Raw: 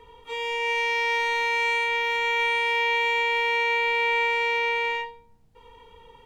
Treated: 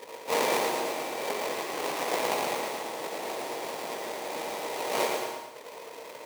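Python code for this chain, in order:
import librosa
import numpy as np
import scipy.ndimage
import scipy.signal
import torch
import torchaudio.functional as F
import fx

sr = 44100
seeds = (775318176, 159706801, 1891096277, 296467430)

y = fx.chord_vocoder(x, sr, chord='minor triad', root=49, at=(1.29, 2.56))
y = fx.sample_hold(y, sr, seeds[0], rate_hz=1500.0, jitter_pct=20)
y = fx.over_compress(y, sr, threshold_db=-30.0, ratio=-0.5)
y = scipy.signal.sosfilt(scipy.signal.butter(2, 370.0, 'highpass', fs=sr, output='sos'), y)
y = fx.echo_feedback(y, sr, ms=112, feedback_pct=45, wet_db=-5)
y = fx.rev_plate(y, sr, seeds[1], rt60_s=0.97, hf_ratio=0.85, predelay_ms=105, drr_db=6.0)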